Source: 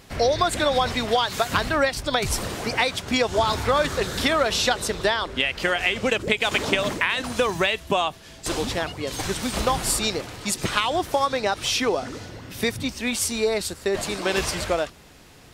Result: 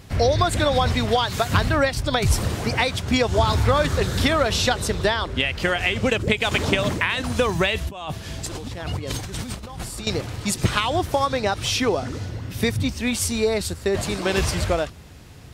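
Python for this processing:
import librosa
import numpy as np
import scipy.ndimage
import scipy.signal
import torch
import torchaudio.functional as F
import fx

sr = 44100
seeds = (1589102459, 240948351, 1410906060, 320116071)

y = fx.peak_eq(x, sr, hz=87.0, db=12.5, octaves=2.0)
y = fx.over_compress(y, sr, threshold_db=-31.0, ratio=-1.0, at=(7.75, 10.07))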